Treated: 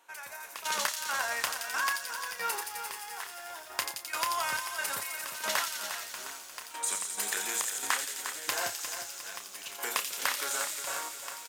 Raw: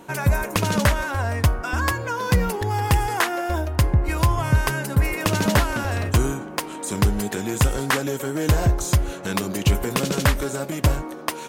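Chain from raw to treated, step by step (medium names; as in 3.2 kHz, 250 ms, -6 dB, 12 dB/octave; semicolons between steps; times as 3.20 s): high-pass 1.1 kHz 12 dB/octave; compression 6:1, threshold -27 dBFS, peak gain reduction 9.5 dB; trance gate "...x.xx.x..x.." 69 bpm -12 dB; doubling 30 ms -9 dB; on a send: feedback echo behind a high-pass 86 ms, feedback 80%, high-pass 3.8 kHz, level -3.5 dB; on the sum: bit-crushed delay 355 ms, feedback 55%, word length 8-bit, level -9 dB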